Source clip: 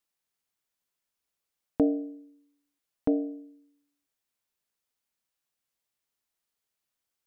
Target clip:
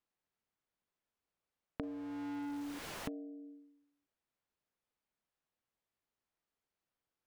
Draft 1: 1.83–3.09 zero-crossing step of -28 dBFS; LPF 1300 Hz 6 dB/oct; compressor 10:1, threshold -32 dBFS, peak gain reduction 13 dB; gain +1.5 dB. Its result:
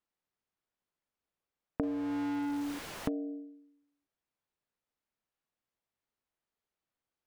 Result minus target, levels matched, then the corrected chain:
compressor: peak gain reduction -9 dB
1.83–3.09 zero-crossing step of -28 dBFS; LPF 1300 Hz 6 dB/oct; compressor 10:1, threshold -42 dBFS, peak gain reduction 22 dB; gain +1.5 dB

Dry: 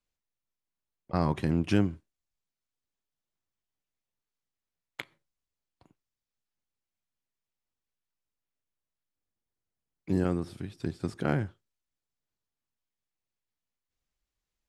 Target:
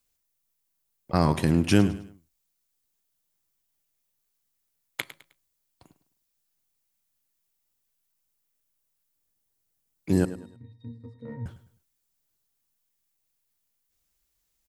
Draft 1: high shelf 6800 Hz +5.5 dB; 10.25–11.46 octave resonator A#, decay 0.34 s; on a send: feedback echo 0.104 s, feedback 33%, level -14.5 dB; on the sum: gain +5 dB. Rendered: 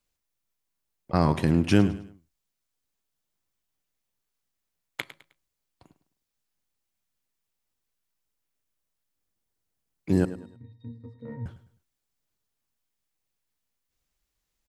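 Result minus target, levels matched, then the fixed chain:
8000 Hz band -6.0 dB
high shelf 6800 Hz +16 dB; 10.25–11.46 octave resonator A#, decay 0.34 s; on a send: feedback echo 0.104 s, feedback 33%, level -14.5 dB; on the sum: gain +5 dB

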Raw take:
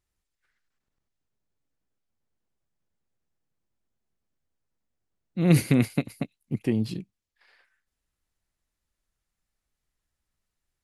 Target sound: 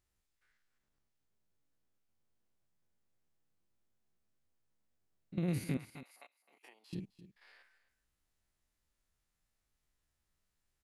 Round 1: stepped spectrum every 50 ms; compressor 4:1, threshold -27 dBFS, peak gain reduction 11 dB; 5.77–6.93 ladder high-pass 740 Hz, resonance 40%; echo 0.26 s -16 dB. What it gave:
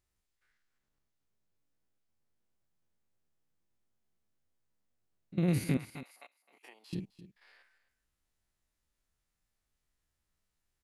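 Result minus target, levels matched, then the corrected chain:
compressor: peak gain reduction -5.5 dB
stepped spectrum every 50 ms; compressor 4:1, threshold -34.5 dBFS, peak gain reduction 16.5 dB; 5.77–6.93 ladder high-pass 740 Hz, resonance 40%; echo 0.26 s -16 dB

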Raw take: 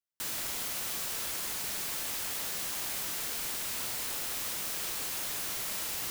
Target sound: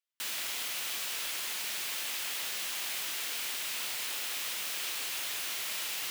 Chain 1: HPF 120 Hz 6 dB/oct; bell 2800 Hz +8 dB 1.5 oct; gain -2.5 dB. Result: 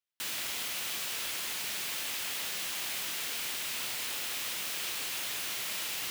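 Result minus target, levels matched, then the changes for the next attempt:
125 Hz band +7.5 dB
change: HPF 420 Hz 6 dB/oct

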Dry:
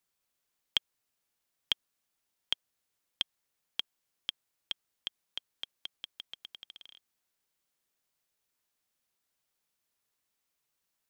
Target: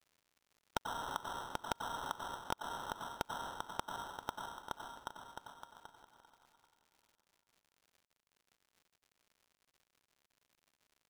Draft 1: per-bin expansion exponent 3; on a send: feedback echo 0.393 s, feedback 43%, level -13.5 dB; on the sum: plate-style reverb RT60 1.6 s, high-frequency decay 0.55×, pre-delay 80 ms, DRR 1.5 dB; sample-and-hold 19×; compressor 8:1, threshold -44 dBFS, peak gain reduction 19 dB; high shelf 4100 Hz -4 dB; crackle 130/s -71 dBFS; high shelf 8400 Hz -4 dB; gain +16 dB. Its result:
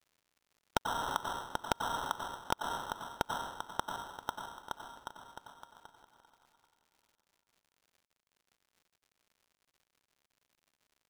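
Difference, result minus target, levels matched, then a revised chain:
compressor: peak gain reduction -6 dB
per-bin expansion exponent 3; on a send: feedback echo 0.393 s, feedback 43%, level -13.5 dB; on the sum: plate-style reverb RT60 1.6 s, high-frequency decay 0.55×, pre-delay 80 ms, DRR 1.5 dB; sample-and-hold 19×; compressor 8:1, threshold -51 dBFS, peak gain reduction 25 dB; high shelf 4100 Hz -4 dB; crackle 130/s -71 dBFS; high shelf 8400 Hz -4 dB; gain +16 dB

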